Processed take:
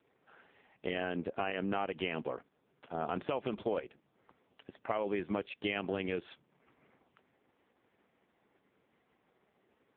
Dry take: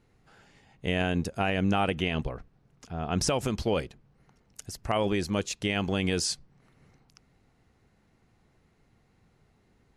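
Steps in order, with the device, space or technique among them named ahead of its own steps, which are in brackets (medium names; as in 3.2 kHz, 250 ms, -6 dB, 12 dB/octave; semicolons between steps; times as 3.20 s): voicemail (band-pass 300–3100 Hz; compression 10:1, threshold -31 dBFS, peak gain reduction 10 dB; trim +2.5 dB; AMR-NB 4.75 kbps 8 kHz)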